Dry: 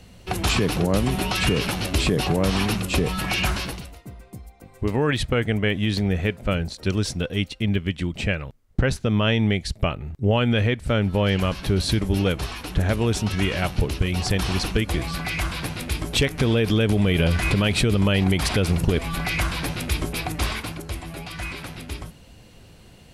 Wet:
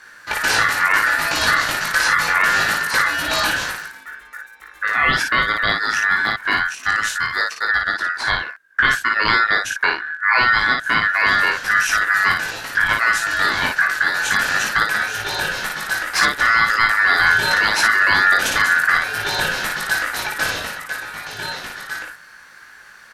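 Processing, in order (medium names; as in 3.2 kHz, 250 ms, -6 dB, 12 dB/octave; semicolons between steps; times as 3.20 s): ring modulator 1.6 kHz; early reflections 19 ms -4 dB, 56 ms -3.5 dB; trim +4.5 dB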